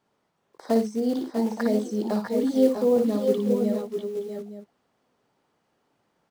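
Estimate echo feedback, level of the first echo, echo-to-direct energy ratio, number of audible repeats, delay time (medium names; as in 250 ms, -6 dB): no regular repeats, -6.0 dB, -1.5 dB, 3, 57 ms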